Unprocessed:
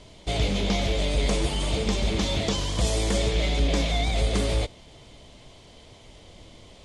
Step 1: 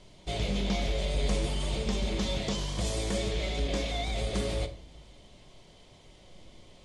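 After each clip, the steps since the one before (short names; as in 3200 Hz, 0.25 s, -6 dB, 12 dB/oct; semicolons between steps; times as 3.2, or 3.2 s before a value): shoebox room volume 650 m³, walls furnished, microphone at 1 m; gain -7 dB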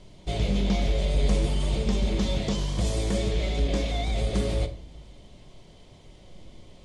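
low shelf 460 Hz +6.5 dB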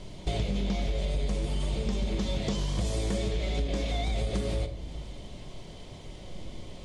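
compressor 6:1, threshold -33 dBFS, peak gain reduction 14.5 dB; gain +6.5 dB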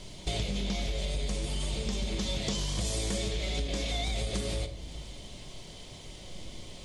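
high shelf 2400 Hz +11 dB; gain -3.5 dB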